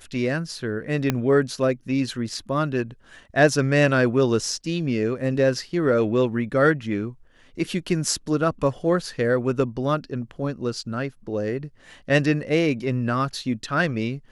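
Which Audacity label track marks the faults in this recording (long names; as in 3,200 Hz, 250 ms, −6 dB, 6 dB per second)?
1.100000	1.100000	click −7 dBFS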